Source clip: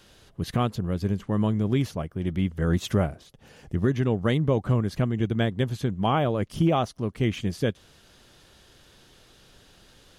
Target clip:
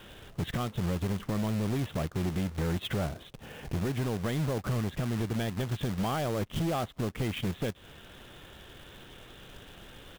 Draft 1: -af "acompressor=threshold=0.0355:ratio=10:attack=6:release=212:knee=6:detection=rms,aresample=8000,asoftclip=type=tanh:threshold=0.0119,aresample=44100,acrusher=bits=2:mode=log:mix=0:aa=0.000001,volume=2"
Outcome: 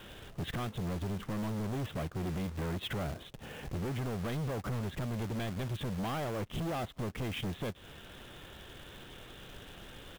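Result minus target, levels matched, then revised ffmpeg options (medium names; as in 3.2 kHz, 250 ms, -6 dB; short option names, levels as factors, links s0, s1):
saturation: distortion +7 dB
-af "acompressor=threshold=0.0355:ratio=10:attack=6:release=212:knee=6:detection=rms,aresample=8000,asoftclip=type=tanh:threshold=0.0282,aresample=44100,acrusher=bits=2:mode=log:mix=0:aa=0.000001,volume=2"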